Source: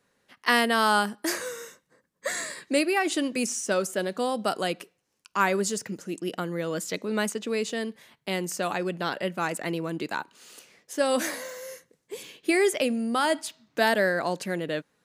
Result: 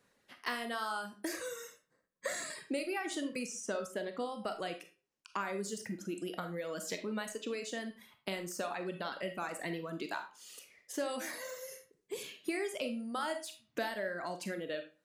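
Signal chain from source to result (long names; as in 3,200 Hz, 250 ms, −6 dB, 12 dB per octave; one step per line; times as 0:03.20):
downward compressor 5 to 1, threshold −33 dBFS, peak gain reduction 15 dB
reverb reduction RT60 1.8 s
0:03.39–0:05.45: high-shelf EQ 7,500 Hz −10 dB
de-essing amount 80%
convolution reverb RT60 0.35 s, pre-delay 4 ms, DRR 6 dB
level −1.5 dB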